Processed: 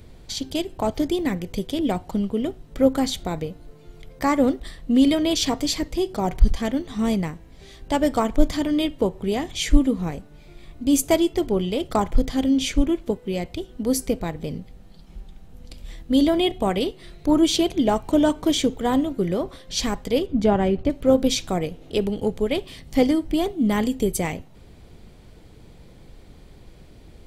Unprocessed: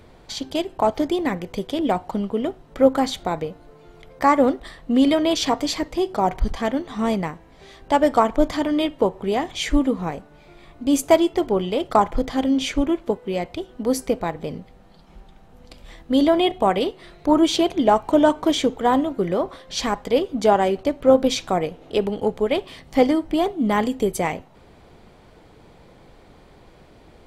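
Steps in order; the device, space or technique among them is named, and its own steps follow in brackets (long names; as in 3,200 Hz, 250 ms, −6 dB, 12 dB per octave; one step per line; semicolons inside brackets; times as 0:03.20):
smiley-face EQ (low-shelf EQ 110 Hz +7 dB; parametric band 960 Hz −8.5 dB 2.1 octaves; high-shelf EQ 7,800 Hz +5.5 dB)
0:20.26–0:20.90: bass and treble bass +6 dB, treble −14 dB
level +1 dB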